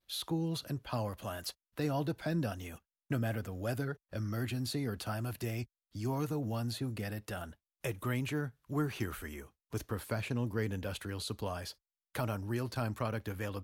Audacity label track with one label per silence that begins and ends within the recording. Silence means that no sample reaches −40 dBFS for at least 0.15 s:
1.510000	1.780000	silence
2.760000	3.110000	silence
3.940000	4.130000	silence
5.640000	5.950000	silence
7.450000	7.840000	silence
8.490000	8.700000	silence
9.420000	9.730000	silence
11.710000	12.150000	silence